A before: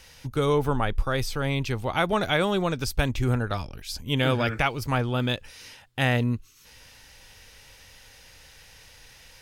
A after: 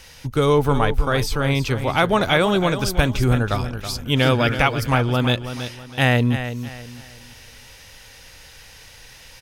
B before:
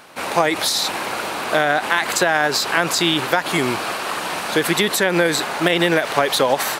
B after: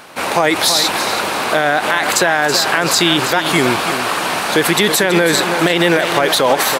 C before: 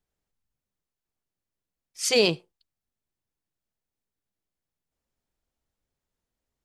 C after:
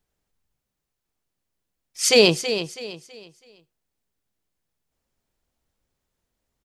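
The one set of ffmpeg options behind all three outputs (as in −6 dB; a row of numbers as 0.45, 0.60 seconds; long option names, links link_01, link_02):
-af "aecho=1:1:326|652|978|1304:0.299|0.0985|0.0325|0.0107,alimiter=level_in=7dB:limit=-1dB:release=50:level=0:latency=1,volume=-1dB"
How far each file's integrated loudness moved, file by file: +6.0, +5.0, +4.5 LU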